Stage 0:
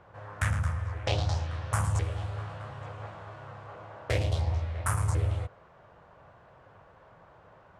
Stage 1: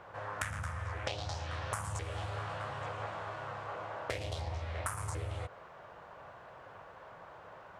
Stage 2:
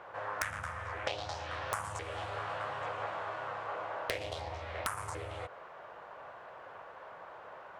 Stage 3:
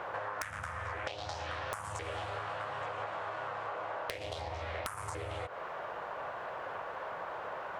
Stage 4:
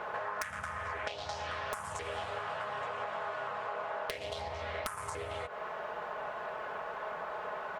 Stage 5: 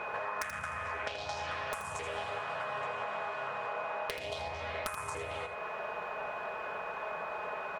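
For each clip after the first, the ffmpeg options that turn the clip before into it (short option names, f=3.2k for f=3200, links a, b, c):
-af "lowshelf=f=290:g=-10.5,acompressor=threshold=-40dB:ratio=12,volume=6dB"
-af "bass=f=250:g=-11,treble=f=4k:g=-6,aeval=exprs='(mod(11.2*val(0)+1,2)-1)/11.2':c=same,volume=3dB"
-af "acompressor=threshold=-45dB:ratio=10,volume=9.5dB"
-af "aecho=1:1:4.7:0.55"
-af "aeval=exprs='val(0)+0.00708*sin(2*PI*2500*n/s)':c=same,aecho=1:1:81:0.355"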